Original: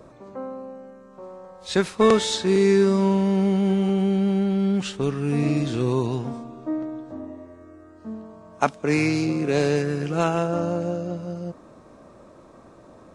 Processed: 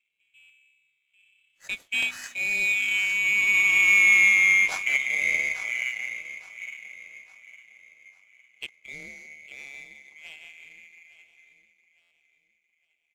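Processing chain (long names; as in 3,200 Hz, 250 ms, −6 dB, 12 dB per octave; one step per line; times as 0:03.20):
neighbouring bands swapped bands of 2,000 Hz
source passing by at 0:04.18, 13 m/s, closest 7.5 metres
repeating echo 858 ms, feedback 50%, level −11.5 dB
power curve on the samples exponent 1.4
buffer that repeats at 0:00.39/0:12.01, samples 512, times 8
level +5.5 dB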